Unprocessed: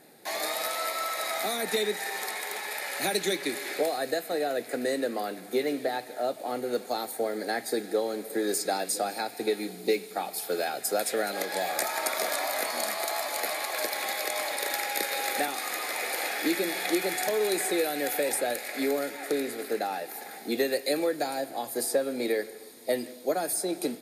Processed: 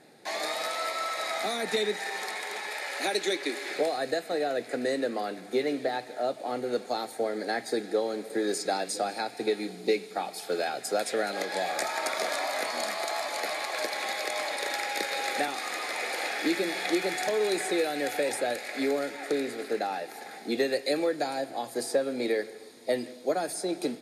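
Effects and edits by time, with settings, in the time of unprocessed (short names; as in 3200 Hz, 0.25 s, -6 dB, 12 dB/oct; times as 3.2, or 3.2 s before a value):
2.71–3.71 HPF 250 Hz 24 dB/oct
whole clip: LPF 7200 Hz 12 dB/oct; bell 130 Hz +3 dB 0.24 oct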